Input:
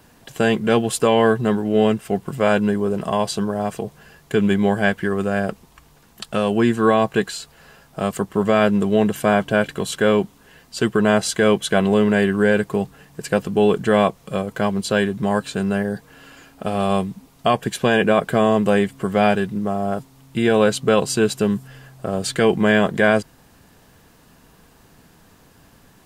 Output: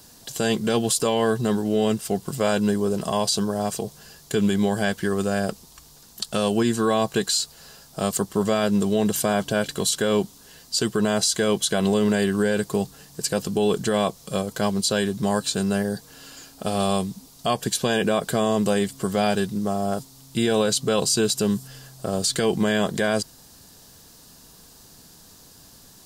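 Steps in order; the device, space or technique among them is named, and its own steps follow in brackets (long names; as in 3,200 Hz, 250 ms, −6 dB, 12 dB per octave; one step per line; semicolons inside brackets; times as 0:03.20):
over-bright horn tweeter (high shelf with overshoot 3,300 Hz +10.5 dB, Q 1.5; brickwall limiter −9.5 dBFS, peak gain reduction 9.5 dB)
level −2 dB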